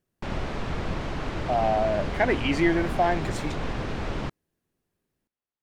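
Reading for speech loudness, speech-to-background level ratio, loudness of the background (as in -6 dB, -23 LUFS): -25.5 LUFS, 7.0 dB, -32.5 LUFS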